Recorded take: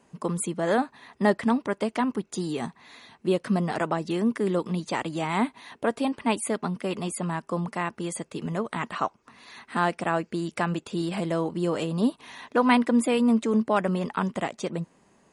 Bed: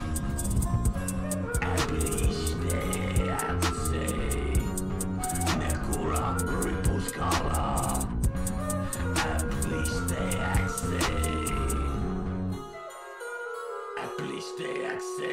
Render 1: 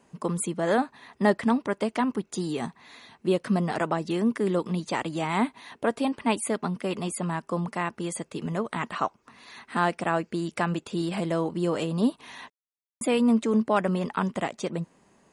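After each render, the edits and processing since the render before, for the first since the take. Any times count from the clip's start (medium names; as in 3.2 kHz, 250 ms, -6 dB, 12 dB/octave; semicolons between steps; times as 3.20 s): 12.50–13.01 s: mute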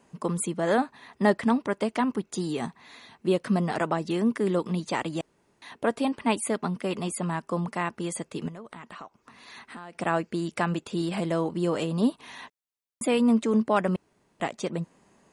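5.21–5.62 s: room tone; 8.48–9.95 s: compression 5:1, threshold -40 dBFS; 13.96–14.40 s: room tone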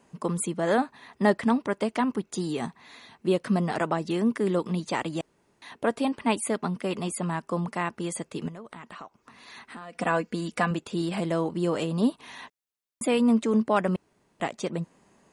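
9.81–10.71 s: comb 4.1 ms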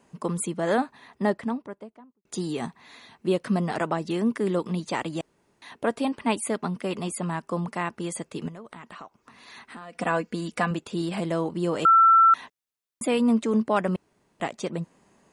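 0.82–2.25 s: studio fade out; 11.85–12.34 s: bleep 1.34 kHz -12.5 dBFS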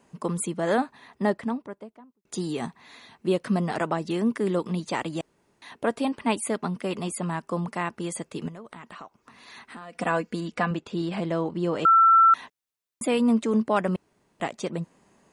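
10.40–12.13 s: distance through air 84 m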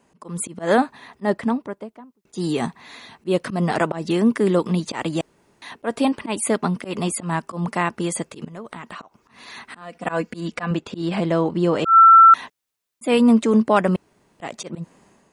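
level rider gain up to 7.5 dB; slow attack 128 ms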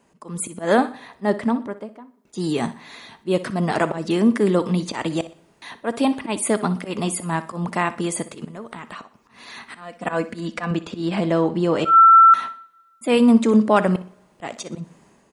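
feedback delay 61 ms, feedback 35%, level -16 dB; two-slope reverb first 0.43 s, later 1.6 s, from -18 dB, DRR 16.5 dB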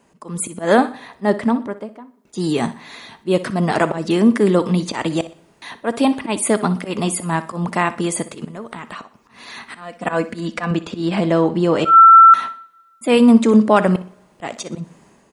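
trim +3.5 dB; peak limiter -1 dBFS, peak gain reduction 1 dB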